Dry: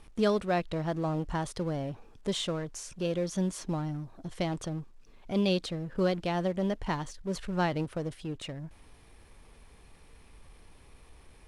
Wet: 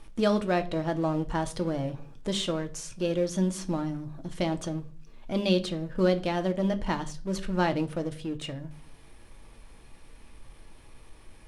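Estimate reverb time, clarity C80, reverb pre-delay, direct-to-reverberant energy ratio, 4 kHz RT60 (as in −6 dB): 0.45 s, 21.5 dB, 3 ms, 7.5 dB, 0.35 s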